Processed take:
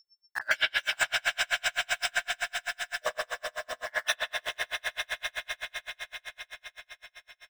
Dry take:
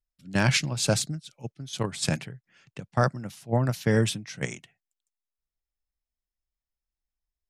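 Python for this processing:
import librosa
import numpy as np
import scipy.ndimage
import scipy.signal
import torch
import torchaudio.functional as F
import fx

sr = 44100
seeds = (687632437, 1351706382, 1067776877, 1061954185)

p1 = fx.spec_dropout(x, sr, seeds[0], share_pct=75)
p2 = scipy.signal.sosfilt(scipy.signal.butter(4, 900.0, 'highpass', fs=sr, output='sos'), p1)
p3 = fx.high_shelf(p2, sr, hz=3300.0, db=-11.0)
p4 = fx.leveller(p3, sr, passes=2)
p5 = fx.level_steps(p4, sr, step_db=11)
p6 = p4 + F.gain(torch.from_numpy(p5), -3.0).numpy()
p7 = np.where(np.abs(p6) >= 10.0 ** (-34.5 / 20.0), p6, 0.0)
p8 = fx.rev_spring(p7, sr, rt60_s=1.9, pass_ms=(42,), chirp_ms=25, drr_db=-3.5)
p9 = p8 + 10.0 ** (-57.0 / 20.0) * np.sin(2.0 * np.pi * 5400.0 * np.arange(len(p8)) / sr)
p10 = fx.doubler(p9, sr, ms=16.0, db=-3)
p11 = p10 + fx.echo_swell(p10, sr, ms=83, loudest=8, wet_db=-9, dry=0)
p12 = p11 * 10.0 ** (-39 * (0.5 - 0.5 * np.cos(2.0 * np.pi * 7.8 * np.arange(len(p11)) / sr)) / 20.0)
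y = F.gain(torch.from_numpy(p12), 2.0).numpy()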